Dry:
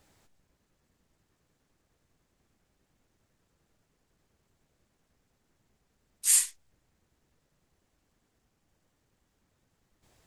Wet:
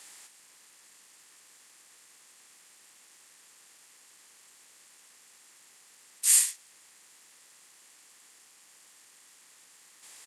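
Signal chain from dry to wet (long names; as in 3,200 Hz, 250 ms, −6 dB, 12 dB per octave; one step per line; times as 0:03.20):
compressor on every frequency bin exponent 0.6
high-pass filter 300 Hz 12 dB per octave
double-tracking delay 16 ms −12 dB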